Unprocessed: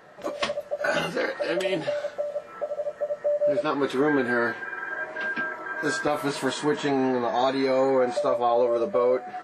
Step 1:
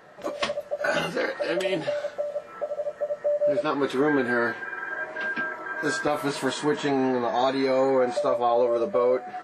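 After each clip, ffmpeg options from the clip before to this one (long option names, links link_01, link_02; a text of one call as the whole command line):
ffmpeg -i in.wav -af anull out.wav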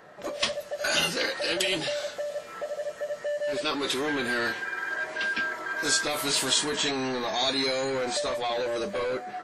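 ffmpeg -i in.wav -filter_complex "[0:a]acrossover=split=2800[link_01][link_02];[link_01]asoftclip=type=tanh:threshold=-27dB[link_03];[link_02]dynaudnorm=framelen=190:gausssize=5:maxgain=12dB[link_04];[link_03][link_04]amix=inputs=2:normalize=0" out.wav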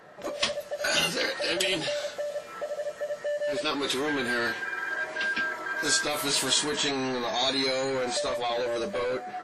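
ffmpeg -i in.wav -ar 48000 -c:a libvorbis -b:a 128k out.ogg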